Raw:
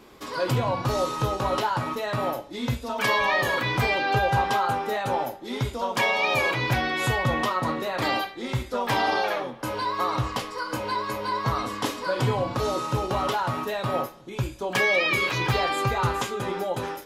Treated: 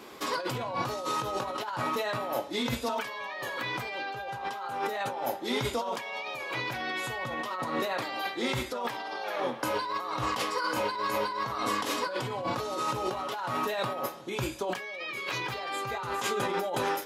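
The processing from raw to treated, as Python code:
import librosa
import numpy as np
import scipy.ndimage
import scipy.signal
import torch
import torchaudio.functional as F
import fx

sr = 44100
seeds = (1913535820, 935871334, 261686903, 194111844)

y = fx.highpass(x, sr, hz=320.0, slope=6)
y = fx.over_compress(y, sr, threshold_db=-33.0, ratio=-1.0)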